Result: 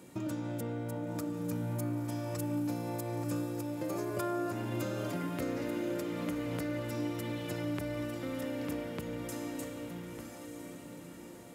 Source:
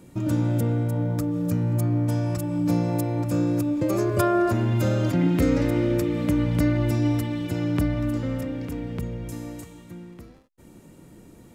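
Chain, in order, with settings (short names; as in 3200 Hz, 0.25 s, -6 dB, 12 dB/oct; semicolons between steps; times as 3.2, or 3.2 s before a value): HPF 360 Hz 6 dB/oct; compressor, threshold -34 dBFS, peak gain reduction 13.5 dB; on a send: diffused feedback echo 1.01 s, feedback 45%, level -6 dB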